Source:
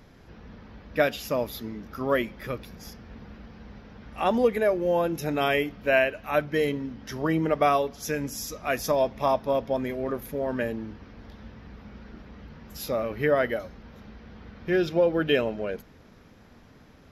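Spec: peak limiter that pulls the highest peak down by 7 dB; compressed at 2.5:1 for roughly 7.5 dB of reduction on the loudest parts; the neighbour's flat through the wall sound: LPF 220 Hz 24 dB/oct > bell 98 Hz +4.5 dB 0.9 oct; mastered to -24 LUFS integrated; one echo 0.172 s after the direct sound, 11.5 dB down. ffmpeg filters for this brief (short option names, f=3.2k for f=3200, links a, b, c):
-af "acompressor=threshold=-28dB:ratio=2.5,alimiter=limit=-21.5dB:level=0:latency=1,lowpass=f=220:w=0.5412,lowpass=f=220:w=1.3066,equalizer=f=98:t=o:w=0.9:g=4.5,aecho=1:1:172:0.266,volume=18.5dB"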